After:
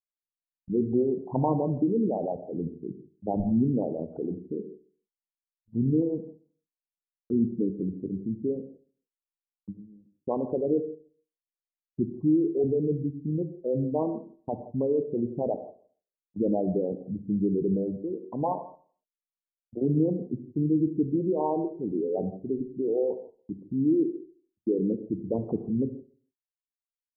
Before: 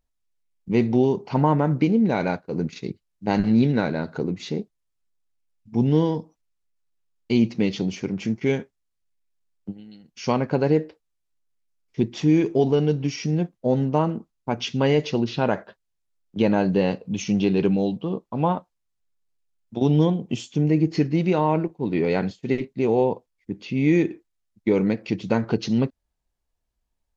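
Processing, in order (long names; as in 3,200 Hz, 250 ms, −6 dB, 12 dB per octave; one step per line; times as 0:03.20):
spectral envelope exaggerated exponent 3
Chebyshev low-pass with heavy ripple 1,100 Hz, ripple 3 dB
downward expander −44 dBFS
on a send: repeating echo 72 ms, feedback 55%, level −22 dB
on the sum: reverb whose tail is shaped and stops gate 190 ms flat, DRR 9 dB
level −5 dB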